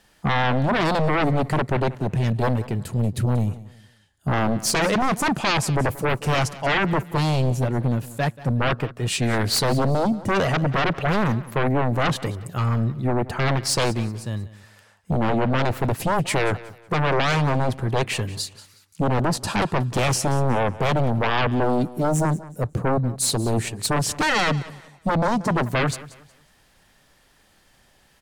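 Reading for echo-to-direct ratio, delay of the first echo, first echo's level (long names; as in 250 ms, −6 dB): −17.5 dB, 183 ms, −18.0 dB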